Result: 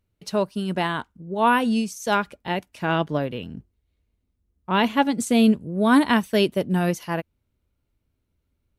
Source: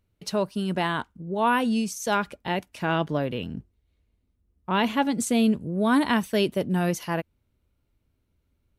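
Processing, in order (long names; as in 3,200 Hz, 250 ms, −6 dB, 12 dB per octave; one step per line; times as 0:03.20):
expander for the loud parts 1.5 to 1, over −32 dBFS
level +5 dB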